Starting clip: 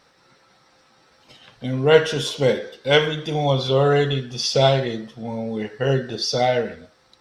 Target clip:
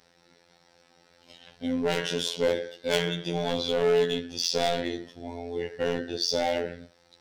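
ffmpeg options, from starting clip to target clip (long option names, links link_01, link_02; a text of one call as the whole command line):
ffmpeg -i in.wav -af "volume=17dB,asoftclip=hard,volume=-17dB,equalizer=frequency=1200:width=3.5:gain=-9.5,afftfilt=real='hypot(re,im)*cos(PI*b)':imag='0':win_size=2048:overlap=0.75" out.wav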